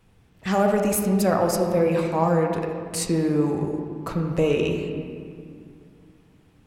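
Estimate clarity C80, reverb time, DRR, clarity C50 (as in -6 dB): 5.0 dB, 2.3 s, 2.0 dB, 4.0 dB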